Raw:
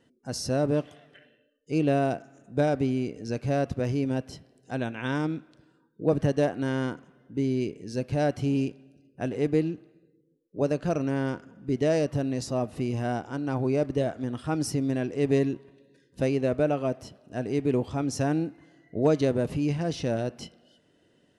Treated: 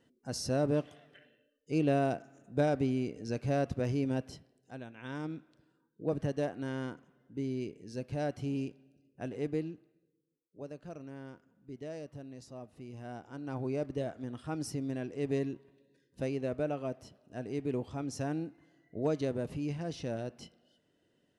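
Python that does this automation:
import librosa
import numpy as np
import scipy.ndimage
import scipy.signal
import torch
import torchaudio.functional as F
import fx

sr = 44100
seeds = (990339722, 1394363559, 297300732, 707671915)

y = fx.gain(x, sr, db=fx.line((4.28, -4.5), (4.86, -16.0), (5.34, -9.0), (9.45, -9.0), (10.63, -18.5), (12.82, -18.5), (13.57, -9.0)))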